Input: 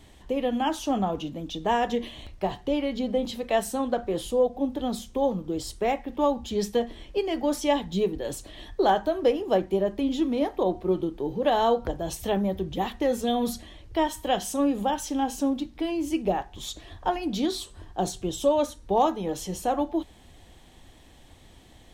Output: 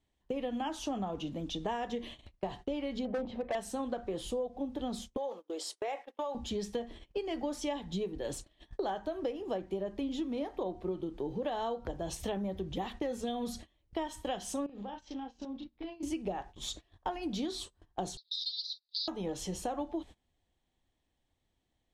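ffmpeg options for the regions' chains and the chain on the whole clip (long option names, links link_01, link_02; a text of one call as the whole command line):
ffmpeg -i in.wav -filter_complex "[0:a]asettb=1/sr,asplit=3[link_01][link_02][link_03];[link_01]atrim=end=3.054[link_04];[link_02]atrim=start=3.05:end=3.55,asetpts=PTS-STARTPTS,afade=type=in:duration=0.004:curve=qsin,afade=type=out:start_time=0.496:duration=0.004:curve=qsin,lowpass=1800,equalizer=frequency=680:width=1.6:gain=7.5,asoftclip=type=hard:threshold=-20.5dB[link_05];[link_03]atrim=start=3.546[link_06];[link_04][link_05]acrossfade=duration=0.004:curve1=hsin:curve2=qsin[link_07];[link_07][link_06]acrossfade=duration=0.004:curve1=qsin:curve2=hsin,asettb=1/sr,asplit=3[link_08][link_09][link_10];[link_08]atrim=end=5.174[link_11];[link_09]atrim=start=5.17:end=6.35,asetpts=PTS-STARTPTS,afade=type=in:duration=0.004:curve=qsin,afade=type=out:start_time=1.176:duration=0.004:curve=qsin,highpass=frequency=420:width=0.5412,highpass=frequency=420:width=1.3066,acompressor=threshold=-26dB:ratio=5:attack=3.2:release=140:knee=1:detection=peak[link_12];[link_10]atrim=start=6.346[link_13];[link_11][link_12]acrossfade=duration=0.004:curve1=hsin:curve2=qsin[link_14];[link_14][link_13]acrossfade=duration=0.004:curve1=qsin:curve2=hsin,asettb=1/sr,asplit=3[link_15][link_16][link_17];[link_15]atrim=end=14.664[link_18];[link_16]atrim=start=14.66:end=16.03,asetpts=PTS-STARTPTS,afade=type=in:duration=0.004:curve=qsin,afade=type=out:start_time=1.366:duration=0.004:curve=qsin,lowpass=frequency=4900:width=0.5412,lowpass=frequency=4900:width=1.3066,acompressor=threshold=-36dB:ratio=10:attack=3.2:release=140:knee=1:detection=peak,asplit=2[link_19][link_20];[link_20]adelay=34,volume=-6dB[link_21];[link_19][link_21]amix=inputs=2:normalize=0,atrim=end_sample=60417[link_22];[link_17]atrim=start=16.026[link_23];[link_18][link_22]acrossfade=duration=0.004:curve1=hsin:curve2=qsin[link_24];[link_24][link_23]acrossfade=duration=0.004:curve1=qsin:curve2=hsin,asettb=1/sr,asplit=3[link_25][link_26][link_27];[link_25]atrim=end=18.174[link_28];[link_26]atrim=start=18.17:end=19.08,asetpts=PTS-STARTPTS,afade=type=in:duration=0.004:curve=qsin,afade=type=out:start_time=0.906:duration=0.004:curve=qsin,aeval=exprs='0.282*sin(PI/2*6.31*val(0)/0.282)':channel_layout=same,asuperpass=centerf=4300:order=8:qfactor=3.3,aderivative[link_29];[link_27]atrim=start=19.076[link_30];[link_28][link_29]acrossfade=duration=0.004:curve1=hsin:curve2=qsin[link_31];[link_31][link_30]acrossfade=duration=0.004:curve1=qsin:curve2=hsin,agate=range=-25dB:threshold=-39dB:ratio=16:detection=peak,lowpass=9500,acompressor=threshold=-30dB:ratio=6,volume=-2.5dB" out.wav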